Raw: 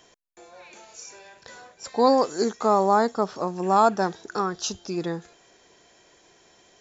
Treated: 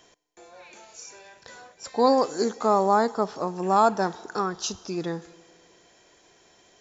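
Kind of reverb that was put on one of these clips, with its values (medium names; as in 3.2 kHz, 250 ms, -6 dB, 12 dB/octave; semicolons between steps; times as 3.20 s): FDN reverb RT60 2.1 s, low-frequency decay 0.75×, high-frequency decay 1×, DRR 19 dB; trim -1 dB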